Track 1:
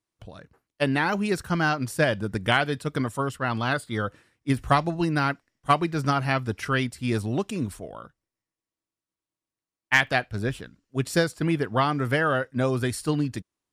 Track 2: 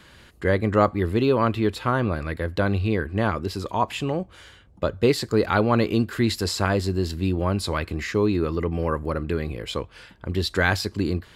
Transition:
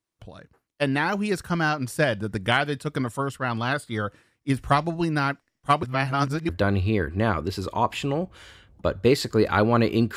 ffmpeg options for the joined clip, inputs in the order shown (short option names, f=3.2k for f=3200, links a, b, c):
-filter_complex "[0:a]apad=whole_dur=10.16,atrim=end=10.16,asplit=2[a][b];[a]atrim=end=5.832[c];[b]atrim=start=5.828:end=6.492,asetpts=PTS-STARTPTS,areverse[d];[1:a]atrim=start=2.468:end=6.14[e];[c][d]acrossfade=d=0.004:c1=hsin:c2=hsin[f];[f][e]acrossfade=d=0.004:c1=hsin:c2=hsin"